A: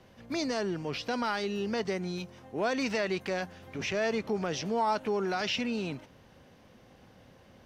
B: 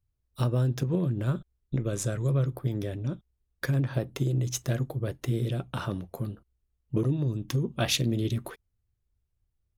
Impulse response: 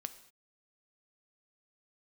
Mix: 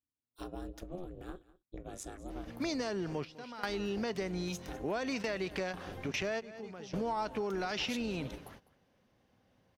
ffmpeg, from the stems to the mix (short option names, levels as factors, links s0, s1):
-filter_complex "[0:a]adelay=2300,volume=1.33,asplit=2[s0][s1];[s1]volume=0.0794[s2];[1:a]highpass=f=260:p=1,aeval=exprs='val(0)*sin(2*PI*180*n/s)':c=same,volume=0.355,asplit=3[s3][s4][s5];[s4]volume=0.1[s6];[s5]apad=whole_len=439158[s7];[s0][s7]sidechaingate=range=0.126:threshold=0.00112:ratio=16:detection=peak[s8];[s2][s6]amix=inputs=2:normalize=0,aecho=0:1:202:1[s9];[s8][s3][s9]amix=inputs=3:normalize=0,acompressor=threshold=0.0224:ratio=4"